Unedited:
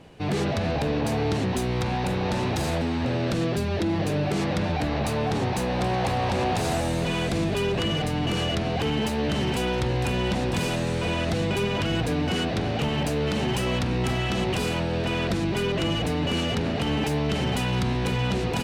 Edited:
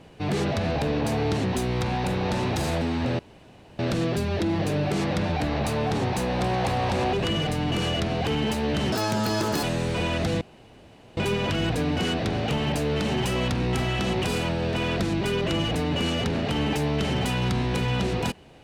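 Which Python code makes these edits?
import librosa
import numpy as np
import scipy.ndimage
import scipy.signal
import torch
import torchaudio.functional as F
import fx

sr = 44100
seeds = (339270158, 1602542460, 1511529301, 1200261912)

y = fx.edit(x, sr, fx.insert_room_tone(at_s=3.19, length_s=0.6),
    fx.cut(start_s=6.53, length_s=1.15),
    fx.speed_span(start_s=9.47, length_s=1.23, speed=1.73),
    fx.insert_room_tone(at_s=11.48, length_s=0.76), tone=tone)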